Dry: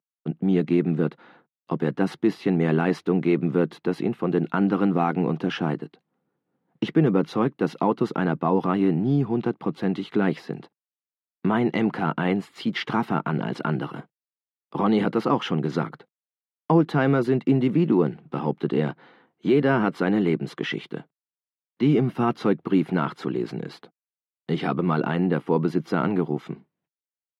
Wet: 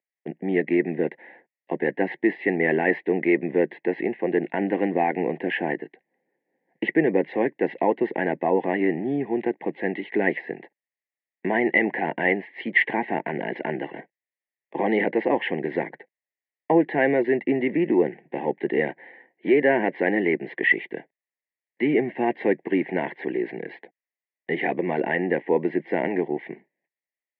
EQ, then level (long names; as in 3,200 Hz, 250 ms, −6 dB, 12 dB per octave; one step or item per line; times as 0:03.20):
Butterworth band-reject 1,300 Hz, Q 0.92
loudspeaker in its box 310–2,400 Hz, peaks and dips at 360 Hz +3 dB, 570 Hz +5 dB, 850 Hz +3 dB, 1,300 Hz +5 dB, 1,900 Hz +10 dB
parametric band 1,700 Hz +14 dB 1 octave
0.0 dB